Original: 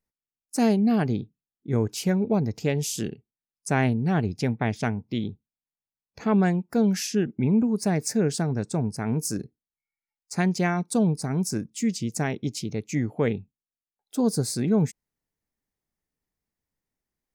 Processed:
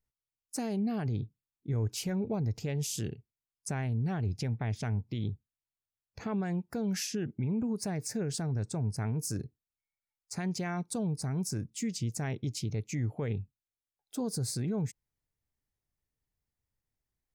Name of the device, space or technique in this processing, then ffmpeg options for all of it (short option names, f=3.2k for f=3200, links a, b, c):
car stereo with a boomy subwoofer: -af "lowshelf=f=150:t=q:w=1.5:g=7,alimiter=limit=-20.5dB:level=0:latency=1:release=79,volume=-4.5dB"